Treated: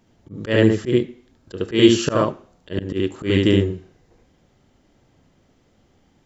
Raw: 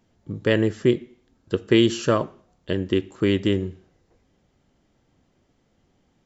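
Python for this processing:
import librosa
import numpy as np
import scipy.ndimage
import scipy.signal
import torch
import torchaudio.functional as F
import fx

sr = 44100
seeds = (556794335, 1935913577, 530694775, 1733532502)

y = fx.room_early_taps(x, sr, ms=(31, 72), db=(-14.5, -3.5))
y = fx.auto_swell(y, sr, attack_ms=133.0)
y = F.gain(torch.from_numpy(y), 4.5).numpy()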